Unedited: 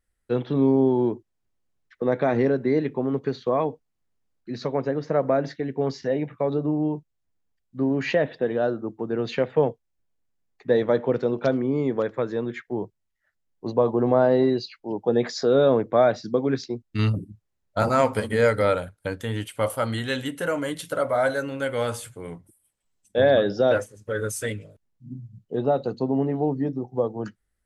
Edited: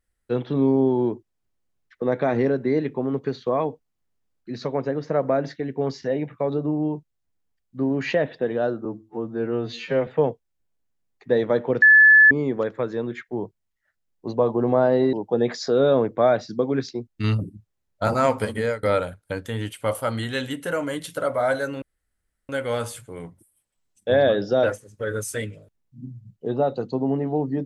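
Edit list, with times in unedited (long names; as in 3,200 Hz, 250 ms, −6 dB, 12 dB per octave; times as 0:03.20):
0:08.85–0:09.46: time-stretch 2×
0:11.21–0:11.70: beep over 1,730 Hz −8.5 dBFS
0:14.52–0:14.88: remove
0:18.29–0:18.58: fade out, to −21.5 dB
0:21.57: splice in room tone 0.67 s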